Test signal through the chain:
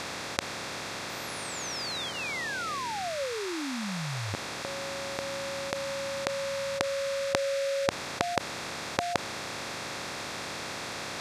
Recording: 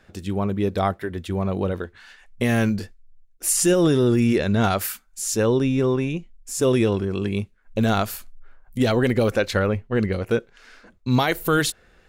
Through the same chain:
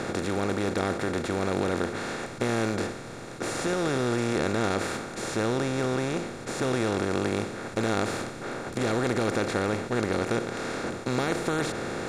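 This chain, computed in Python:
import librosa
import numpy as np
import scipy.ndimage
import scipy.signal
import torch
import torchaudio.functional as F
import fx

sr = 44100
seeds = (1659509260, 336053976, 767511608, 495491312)

y = fx.bin_compress(x, sr, power=0.2)
y = scipy.signal.sosfilt(scipy.signal.butter(2, 5700.0, 'lowpass', fs=sr, output='sos'), y)
y = fx.notch(y, sr, hz=3000.0, q=8.5)
y = y * librosa.db_to_amplitude(-14.5)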